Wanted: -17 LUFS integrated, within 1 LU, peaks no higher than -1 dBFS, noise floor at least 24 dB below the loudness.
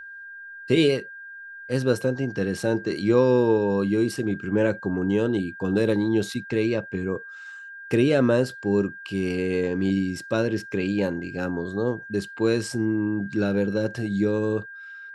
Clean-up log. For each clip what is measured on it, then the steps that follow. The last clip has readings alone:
steady tone 1600 Hz; tone level -38 dBFS; loudness -24.5 LUFS; peak -7.0 dBFS; loudness target -17.0 LUFS
-> notch 1600 Hz, Q 30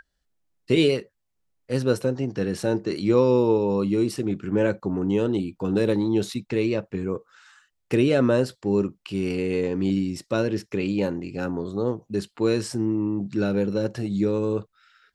steady tone none; loudness -24.5 LUFS; peak -7.5 dBFS; loudness target -17.0 LUFS
-> gain +7.5 dB; limiter -1 dBFS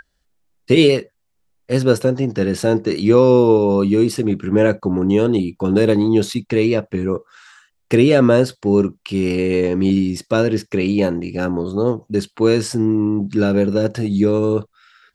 loudness -17.0 LUFS; peak -1.0 dBFS; noise floor -68 dBFS

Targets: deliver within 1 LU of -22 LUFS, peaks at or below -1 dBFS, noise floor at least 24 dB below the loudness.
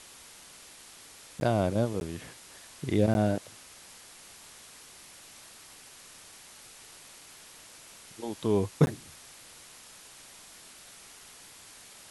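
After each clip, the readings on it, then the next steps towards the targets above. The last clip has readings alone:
dropouts 4; longest dropout 11 ms; noise floor -52 dBFS; noise floor target -53 dBFS; loudness -29.0 LUFS; peak -9.0 dBFS; loudness target -22.0 LUFS
-> interpolate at 1.4/2/3.14/8.86, 11 ms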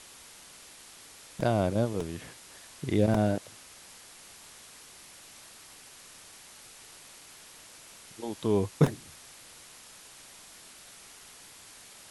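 dropouts 0; noise floor -52 dBFS; noise floor target -53 dBFS
-> noise print and reduce 6 dB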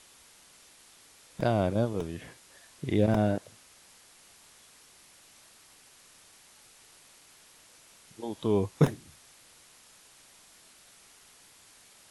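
noise floor -58 dBFS; loudness -29.0 LUFS; peak -9.0 dBFS; loudness target -22.0 LUFS
-> gain +7 dB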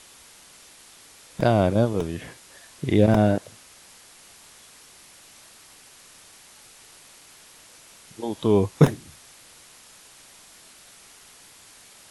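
loudness -22.0 LUFS; peak -2.0 dBFS; noise floor -51 dBFS

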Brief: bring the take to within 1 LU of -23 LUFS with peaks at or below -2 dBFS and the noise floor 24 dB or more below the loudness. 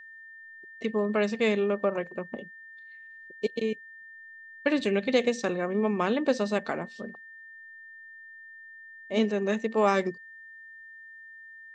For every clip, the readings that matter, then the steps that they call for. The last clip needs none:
steady tone 1800 Hz; tone level -45 dBFS; loudness -28.0 LUFS; peak -10.5 dBFS; loudness target -23.0 LUFS
-> notch 1800 Hz, Q 30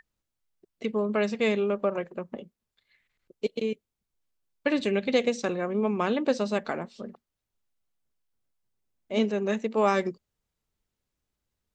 steady tone none; loudness -28.0 LUFS; peak -10.5 dBFS; loudness target -23.0 LUFS
-> gain +5 dB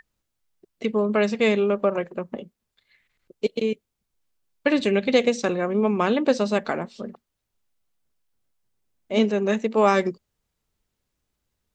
loudness -23.0 LUFS; peak -5.5 dBFS; noise floor -80 dBFS

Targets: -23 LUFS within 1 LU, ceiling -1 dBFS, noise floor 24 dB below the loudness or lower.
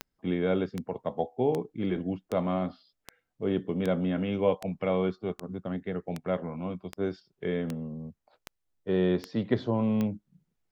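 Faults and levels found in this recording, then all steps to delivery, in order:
clicks 14; loudness -30.5 LUFS; peak -11.0 dBFS; loudness target -23.0 LUFS
-> de-click; gain +7.5 dB

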